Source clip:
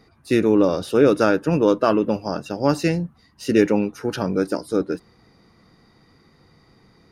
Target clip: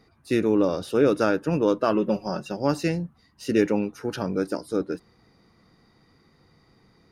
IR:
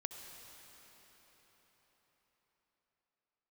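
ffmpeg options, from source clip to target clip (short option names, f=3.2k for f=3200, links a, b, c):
-filter_complex "[0:a]asettb=1/sr,asplit=3[a][b][c];[a]atrim=end=1.954[d];[b]atrim=start=1.95:end=2.57,asetpts=PTS-STARTPTS,afade=t=in:d=0.004:c=qsin,afade=t=out:st=0.616:d=0.004:c=qsin,aecho=1:1:5.4:0.62,atrim=end_sample=27342[e];[c]atrim=start=2.566[f];[d][e]acrossfade=d=0.004:c1=hsin:c2=qsin[g];[g][f]acrossfade=d=0.004:c1=qsin:c2=hsin,volume=-4.5dB"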